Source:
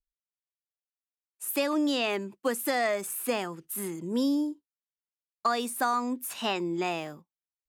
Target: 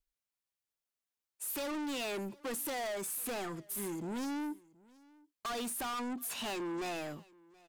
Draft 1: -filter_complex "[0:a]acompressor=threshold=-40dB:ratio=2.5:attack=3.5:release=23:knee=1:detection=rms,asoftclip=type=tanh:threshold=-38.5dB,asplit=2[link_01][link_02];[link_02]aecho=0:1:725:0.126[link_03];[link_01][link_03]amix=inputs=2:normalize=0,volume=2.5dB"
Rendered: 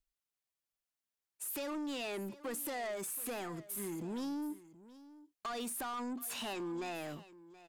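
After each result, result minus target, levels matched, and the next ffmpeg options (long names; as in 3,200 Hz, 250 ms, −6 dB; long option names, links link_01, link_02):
downward compressor: peak gain reduction +12.5 dB; echo-to-direct +7 dB
-filter_complex "[0:a]asoftclip=type=tanh:threshold=-38.5dB,asplit=2[link_01][link_02];[link_02]aecho=0:1:725:0.126[link_03];[link_01][link_03]amix=inputs=2:normalize=0,volume=2.5dB"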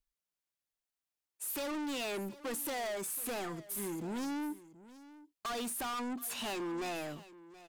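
echo-to-direct +7 dB
-filter_complex "[0:a]asoftclip=type=tanh:threshold=-38.5dB,asplit=2[link_01][link_02];[link_02]aecho=0:1:725:0.0562[link_03];[link_01][link_03]amix=inputs=2:normalize=0,volume=2.5dB"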